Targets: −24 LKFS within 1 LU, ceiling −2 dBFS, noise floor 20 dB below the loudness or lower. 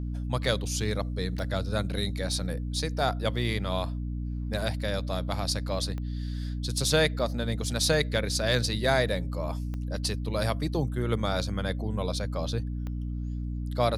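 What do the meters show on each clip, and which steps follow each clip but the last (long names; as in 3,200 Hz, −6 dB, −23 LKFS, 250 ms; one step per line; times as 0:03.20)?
number of clicks 4; mains hum 60 Hz; hum harmonics up to 300 Hz; level of the hum −30 dBFS; integrated loudness −29.5 LKFS; sample peak −9.0 dBFS; target loudness −24.0 LKFS
→ click removal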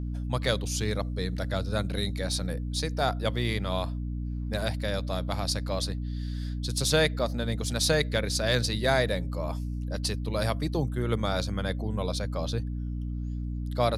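number of clicks 0; mains hum 60 Hz; hum harmonics up to 300 Hz; level of the hum −30 dBFS
→ mains-hum notches 60/120/180/240/300 Hz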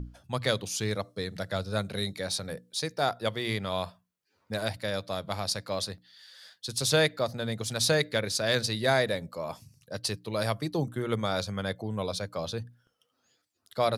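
mains hum none found; integrated loudness −30.5 LKFS; sample peak −9.5 dBFS; target loudness −24.0 LKFS
→ level +6.5 dB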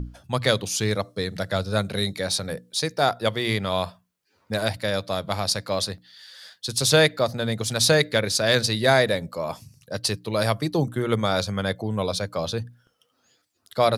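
integrated loudness −24.0 LKFS; sample peak −3.0 dBFS; background noise floor −70 dBFS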